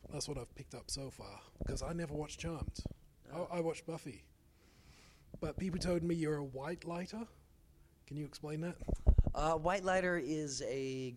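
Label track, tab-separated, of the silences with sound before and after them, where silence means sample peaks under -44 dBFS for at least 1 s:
4.170000	5.340000	silence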